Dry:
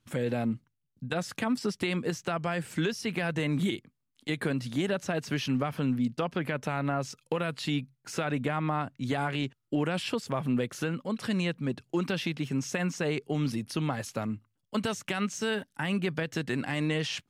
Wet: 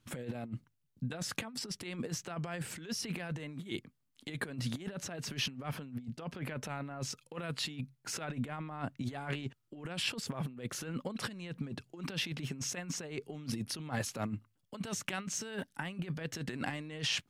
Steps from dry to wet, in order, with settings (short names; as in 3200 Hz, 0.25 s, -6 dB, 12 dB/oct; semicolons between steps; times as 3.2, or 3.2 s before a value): negative-ratio compressor -34 dBFS, ratio -0.5; gain -3.5 dB